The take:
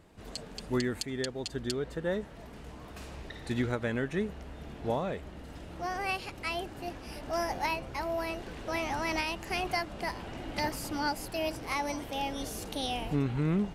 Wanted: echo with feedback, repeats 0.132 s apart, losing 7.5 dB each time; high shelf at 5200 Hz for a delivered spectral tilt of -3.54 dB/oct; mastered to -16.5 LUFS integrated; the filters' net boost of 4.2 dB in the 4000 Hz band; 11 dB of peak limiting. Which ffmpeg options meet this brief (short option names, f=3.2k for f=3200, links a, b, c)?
-af "equalizer=f=4k:t=o:g=8.5,highshelf=f=5.2k:g=-7,alimiter=limit=-23.5dB:level=0:latency=1,aecho=1:1:132|264|396|528|660:0.422|0.177|0.0744|0.0312|0.0131,volume=18dB"